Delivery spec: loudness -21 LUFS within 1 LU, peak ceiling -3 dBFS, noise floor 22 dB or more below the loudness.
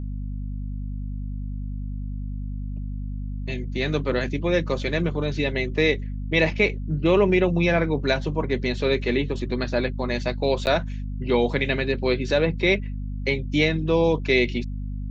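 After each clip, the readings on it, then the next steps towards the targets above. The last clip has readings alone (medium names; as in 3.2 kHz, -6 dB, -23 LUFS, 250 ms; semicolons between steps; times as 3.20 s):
dropouts 1; longest dropout 9.8 ms; hum 50 Hz; highest harmonic 250 Hz; hum level -27 dBFS; loudness -24.5 LUFS; peak level -6.5 dBFS; loudness target -21.0 LUFS
-> interpolate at 10.66 s, 9.8 ms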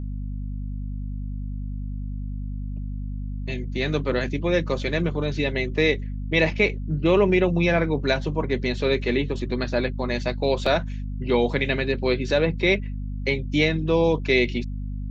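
dropouts 0; hum 50 Hz; highest harmonic 250 Hz; hum level -27 dBFS
-> de-hum 50 Hz, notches 5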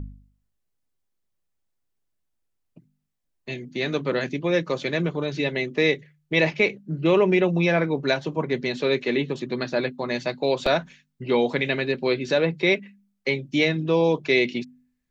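hum not found; loudness -23.5 LUFS; peak level -8.0 dBFS; loudness target -21.0 LUFS
-> trim +2.5 dB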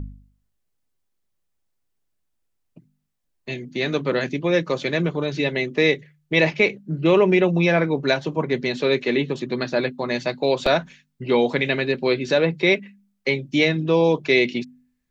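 loudness -21.0 LUFS; peak level -5.5 dBFS; noise floor -73 dBFS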